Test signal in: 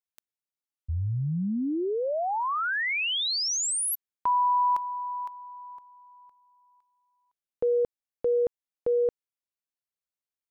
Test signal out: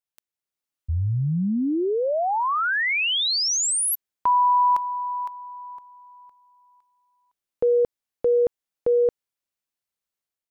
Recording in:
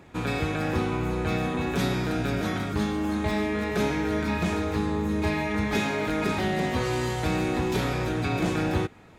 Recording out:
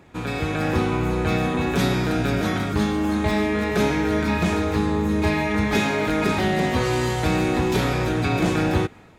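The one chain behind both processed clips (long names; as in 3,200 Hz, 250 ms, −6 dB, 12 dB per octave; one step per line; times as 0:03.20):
automatic gain control gain up to 5 dB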